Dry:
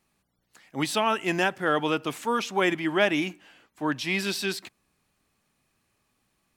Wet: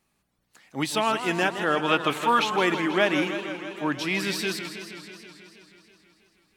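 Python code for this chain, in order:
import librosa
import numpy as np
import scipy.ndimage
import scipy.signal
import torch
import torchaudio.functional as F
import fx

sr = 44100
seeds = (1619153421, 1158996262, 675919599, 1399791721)

y = fx.spec_box(x, sr, start_s=1.89, length_s=0.65, low_hz=510.0, high_hz=4500.0, gain_db=7)
y = fx.echo_warbled(y, sr, ms=161, feedback_pct=73, rate_hz=2.8, cents=188, wet_db=-10)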